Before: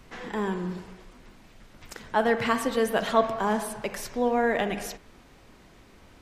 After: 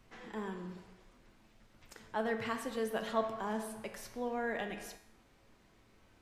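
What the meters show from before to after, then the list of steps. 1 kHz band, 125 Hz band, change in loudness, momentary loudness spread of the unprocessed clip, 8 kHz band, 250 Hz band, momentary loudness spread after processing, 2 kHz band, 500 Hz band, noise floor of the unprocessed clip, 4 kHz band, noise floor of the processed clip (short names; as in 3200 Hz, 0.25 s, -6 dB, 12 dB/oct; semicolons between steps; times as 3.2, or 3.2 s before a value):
-12.0 dB, -12.0 dB, -11.5 dB, 15 LU, -11.5 dB, -11.0 dB, 15 LU, -11.0 dB, -11.5 dB, -54 dBFS, -11.5 dB, -66 dBFS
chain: resonator 110 Hz, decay 0.63 s, harmonics all, mix 70%; gain -3.5 dB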